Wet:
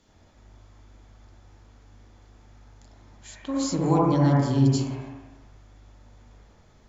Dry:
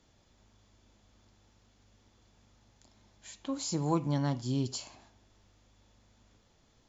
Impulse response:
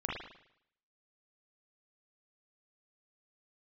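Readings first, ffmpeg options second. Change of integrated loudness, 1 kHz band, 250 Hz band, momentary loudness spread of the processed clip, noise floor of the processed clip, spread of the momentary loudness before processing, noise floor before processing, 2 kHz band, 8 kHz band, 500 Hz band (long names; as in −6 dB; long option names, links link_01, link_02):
+10.0 dB, +10.5 dB, +10.5 dB, 17 LU, −57 dBFS, 15 LU, −67 dBFS, +9.5 dB, can't be measured, +11.0 dB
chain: -filter_complex "[1:a]atrim=start_sample=2205,asetrate=28224,aresample=44100[link_01];[0:a][link_01]afir=irnorm=-1:irlink=0,volume=2.5dB"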